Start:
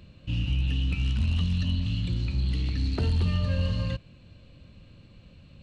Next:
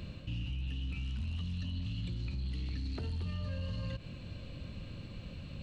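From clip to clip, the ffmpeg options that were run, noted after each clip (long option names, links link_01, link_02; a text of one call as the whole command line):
ffmpeg -i in.wav -af "areverse,acompressor=threshold=-32dB:ratio=6,areverse,alimiter=level_in=13.5dB:limit=-24dB:level=0:latency=1:release=78,volume=-13.5dB,volume=6.5dB" out.wav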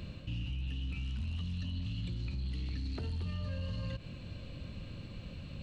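ffmpeg -i in.wav -af anull out.wav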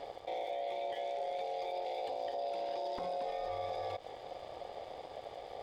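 ffmpeg -i in.wav -af "aeval=exprs='sgn(val(0))*max(abs(val(0))-0.00119,0)':channel_layout=same,aeval=exprs='val(0)*sin(2*PI*630*n/s)':channel_layout=same,volume=2dB" out.wav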